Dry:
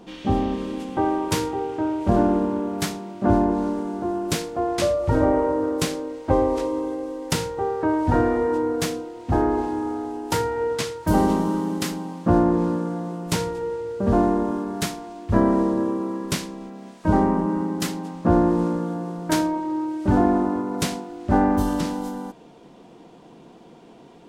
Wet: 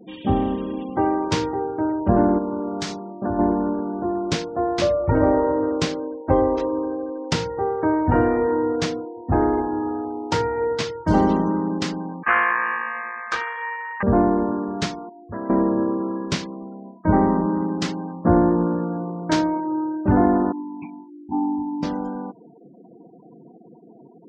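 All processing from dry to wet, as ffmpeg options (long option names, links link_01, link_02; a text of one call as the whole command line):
ffmpeg -i in.wav -filter_complex "[0:a]asettb=1/sr,asplit=3[link_01][link_02][link_03];[link_01]atrim=end=2.384[link_04];[link_02]atrim=start=2.38:end=3.39,asetpts=PTS-STARTPTS,afade=type=in:duration=0.004:curve=qsin,afade=type=out:start_time=1.006:duration=0.004:curve=qsin,bass=frequency=250:gain=-3,treble=frequency=4000:gain=5,acompressor=threshold=-24dB:ratio=2.5:attack=3.2:release=140:knee=1:detection=peak[link_05];[link_03]atrim=start=3.386[link_06];[link_04][link_05]acrossfade=duration=0.004:curve1=hsin:curve2=qsin[link_07];[link_07][link_06]acrossfade=duration=0.004:curve1=qsin:curve2=hsin,asettb=1/sr,asplit=3[link_08][link_09][link_10];[link_08]atrim=end=12.234[link_11];[link_09]atrim=start=12.23:end=14.03,asetpts=PTS-STARTPTS,afade=type=in:duration=0.004:curve=qsin,afade=type=out:start_time=1.796:duration=0.004:curve=qsin,highshelf=frequency=4400:gain=-7,aeval=exprs='val(0)*sin(2*PI*1400*n/s)':channel_layout=same[link_12];[link_10]atrim=start=14.026[link_13];[link_11][link_12]acrossfade=duration=0.004:curve1=hsin:curve2=qsin[link_14];[link_14][link_13]acrossfade=duration=0.004:curve1=qsin:curve2=hsin,asettb=1/sr,asplit=3[link_15][link_16][link_17];[link_15]atrim=end=15.094[link_18];[link_16]atrim=start=15.09:end=15.5,asetpts=PTS-STARTPTS,afade=type=in:duration=0.004:curve=qsin,afade=type=out:start_time=0.406:duration=0.004:curve=qsin,highpass=frequency=580:poles=1,equalizer=frequency=930:width=0.41:gain=-4.5,acompressor=threshold=-29dB:ratio=2.5:attack=3.2:release=140:knee=1:detection=peak[link_19];[link_17]atrim=start=15.496[link_20];[link_18][link_19]acrossfade=duration=0.004:curve1=hsin:curve2=qsin[link_21];[link_21][link_20]acrossfade=duration=0.004:curve1=qsin:curve2=hsin,asettb=1/sr,asplit=3[link_22][link_23][link_24];[link_22]atrim=end=20.524[link_25];[link_23]atrim=start=20.52:end=21.83,asetpts=PTS-STARTPTS,afade=type=in:duration=0.004:curve=qsin,afade=type=out:start_time=1.306:duration=0.004:curve=qsin,asplit=3[link_26][link_27][link_28];[link_26]bandpass=frequency=300:width_type=q:width=8,volume=0dB[link_29];[link_27]bandpass=frequency=870:width_type=q:width=8,volume=-6dB[link_30];[link_28]bandpass=frequency=2240:width_type=q:width=8,volume=-9dB[link_31];[link_29][link_30][link_31]amix=inputs=3:normalize=0,aecho=1:1:1.2:0.38,atrim=end_sample=57771,adynamicequalizer=threshold=0.00794:dfrequency=510:dqfactor=1.3:tfrequency=510:tqfactor=1.3:attack=5:release=100:ratio=0.375:range=2:mode=cutabove:tftype=bell[link_32];[link_24]atrim=start=21.826[link_33];[link_25][link_32]acrossfade=duration=0.004:curve1=hsin:curve2=qsin[link_34];[link_34][link_33]acrossfade=duration=0.004:curve1=qsin:curve2=hsin,highpass=46,afftfilt=real='re*gte(hypot(re,im),0.0126)':imag='im*gte(hypot(re,im),0.0126)':win_size=1024:overlap=0.75,lowpass=frequency=6100:width=0.5412,lowpass=frequency=6100:width=1.3066,volume=1.5dB" out.wav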